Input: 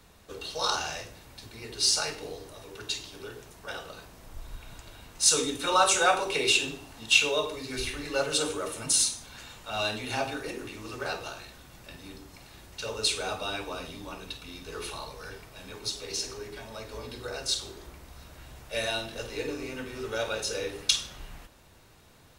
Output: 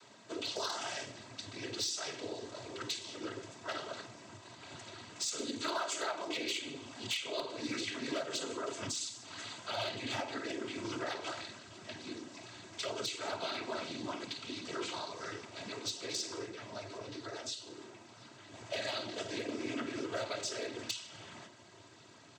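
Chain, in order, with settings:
downward compressor 6 to 1, threshold −36 dBFS, peak gain reduction 19.5 dB
cochlear-implant simulation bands 16
0:16.46–0:18.54: flanger 1.2 Hz, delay 8.5 ms, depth 1.8 ms, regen −54%
hard clipping −30.5 dBFS, distortion −24 dB
comb filter 3.1 ms, depth 48%
level +1 dB

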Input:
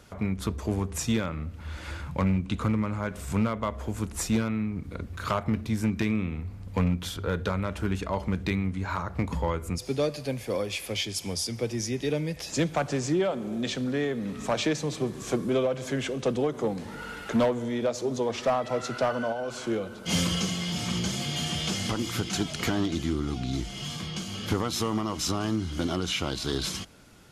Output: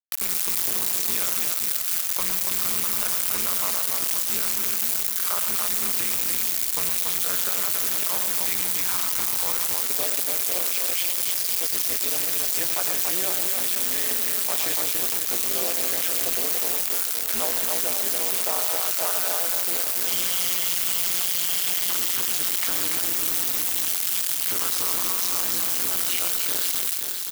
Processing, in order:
low-pass filter 2,000 Hz 6 dB per octave
background noise white −42 dBFS
multi-tap delay 110/126/129/284/506 ms −10.5/−16.5/−10.5/−4/−19.5 dB
bit reduction 5 bits
spectral tilt +3.5 dB per octave
amplitude modulation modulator 180 Hz, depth 90%
low-shelf EQ 330 Hz −9.5 dB
single-tap delay 523 ms −11 dB
envelope flattener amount 50%

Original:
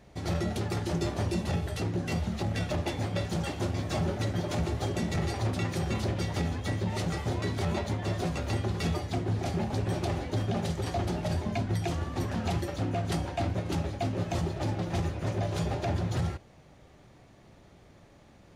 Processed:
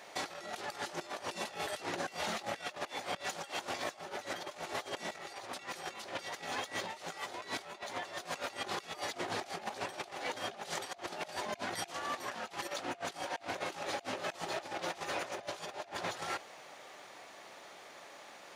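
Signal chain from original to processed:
high-pass filter 730 Hz 12 dB per octave
compressor whose output falls as the input rises −46 dBFS, ratio −0.5
level +5.5 dB

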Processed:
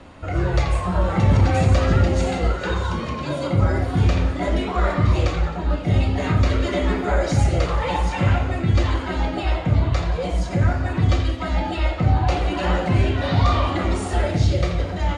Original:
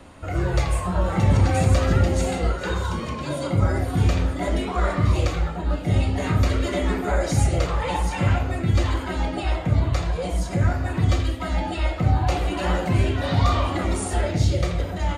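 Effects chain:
low-pass filter 5,800 Hz 12 dB per octave
in parallel at −11 dB: gain into a clipping stage and back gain 15 dB
on the sum: feedback echo with a high-pass in the loop 89 ms, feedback 75%, level −15.5 dB

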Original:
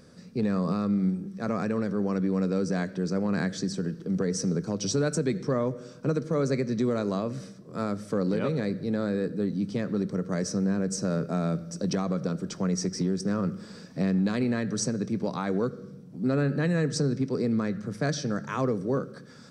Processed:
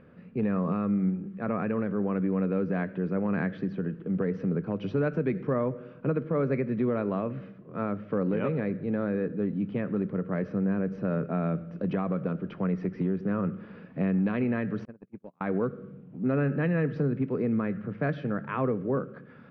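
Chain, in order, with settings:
0:14.85–0:15.41: noise gate −24 dBFS, range −39 dB
elliptic low-pass filter 2,800 Hz, stop band 80 dB

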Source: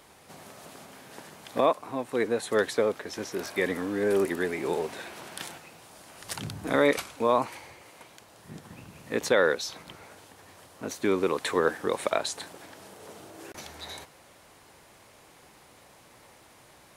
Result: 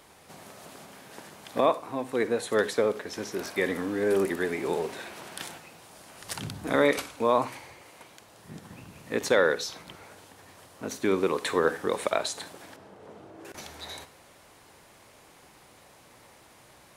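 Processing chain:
0:12.76–0:13.45: low-pass filter 1,200 Hz 6 dB per octave
convolution reverb RT60 0.30 s, pre-delay 42 ms, DRR 15.5 dB

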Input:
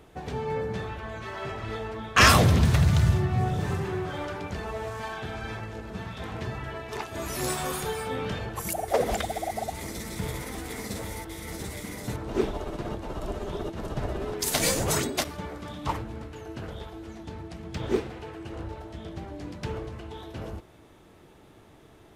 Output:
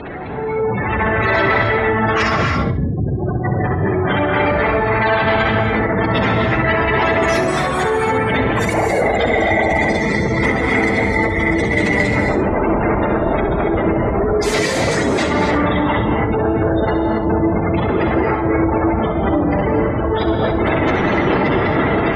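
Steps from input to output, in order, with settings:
sign of each sample alone
gate on every frequency bin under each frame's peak −15 dB strong
high-pass filter 100 Hz 6 dB per octave
parametric band 2,000 Hz +10 dB 0.21 octaves
automatic gain control gain up to 12 dB
high-frequency loss of the air 99 metres
feedback echo with a high-pass in the loop 66 ms, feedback 26%, level −10 dB
reverb whose tail is shaped and stops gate 300 ms rising, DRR 2 dB
level +1.5 dB

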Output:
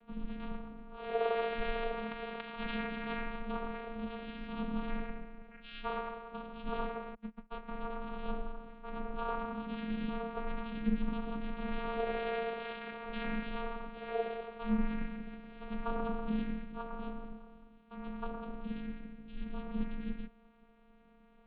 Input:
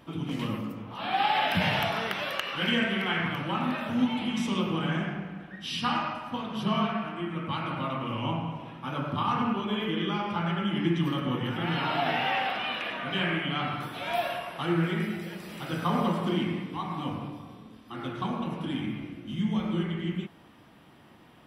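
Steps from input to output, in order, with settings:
0:07.14–0:07.68: noise gate −30 dBFS, range −31 dB
channel vocoder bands 8, square 119 Hz
single-sideband voice off tune −140 Hz 160–3,600 Hz

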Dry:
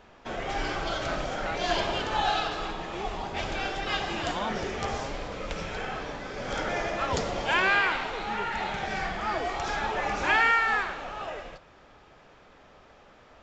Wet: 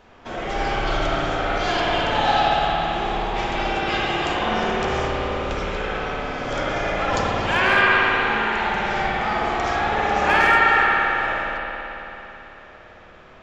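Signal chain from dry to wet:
hard clipping −15 dBFS, distortion −28 dB
spring reverb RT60 3.6 s, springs 55 ms, chirp 80 ms, DRR −5 dB
level +2 dB

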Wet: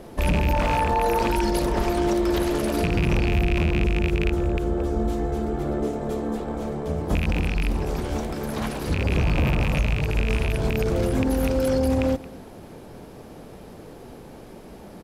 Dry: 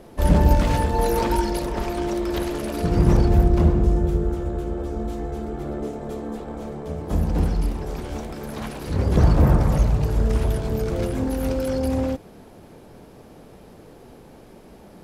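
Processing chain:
loose part that buzzes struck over −19 dBFS, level −12 dBFS
0:00.53–0:01.19: parametric band 930 Hz +9.5 dB 1.7 octaves
single-tap delay 223 ms −23 dB
brickwall limiter −17 dBFS, peak gain reduction 13.5 dB
level +3.5 dB

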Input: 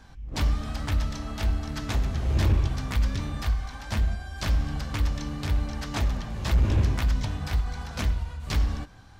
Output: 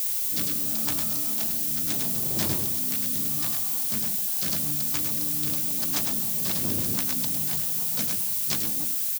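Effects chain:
adaptive Wiener filter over 25 samples
low-shelf EQ 210 Hz −5.5 dB
on a send: single-tap delay 103 ms −5 dB
on the sum: rotating-speaker cabinet horn 0.75 Hz, later 7 Hz, at 0:03.66
high-pass filter 150 Hz 24 dB per octave
bass and treble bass +5 dB, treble +14 dB
background noise violet −27 dBFS

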